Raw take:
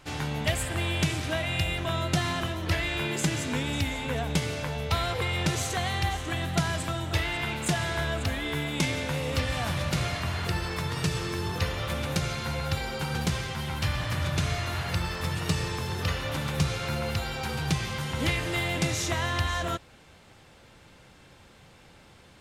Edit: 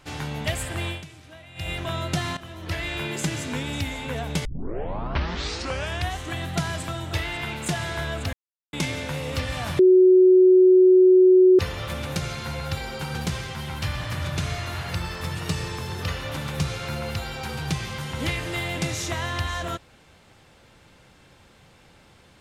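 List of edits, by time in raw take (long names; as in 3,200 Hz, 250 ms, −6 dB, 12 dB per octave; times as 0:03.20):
0:00.88–0:01.70: duck −16.5 dB, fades 0.15 s
0:02.37–0:02.88: fade in, from −15 dB
0:04.45: tape start 1.74 s
0:08.33–0:08.73: silence
0:09.79–0:11.59: beep over 370 Hz −10.5 dBFS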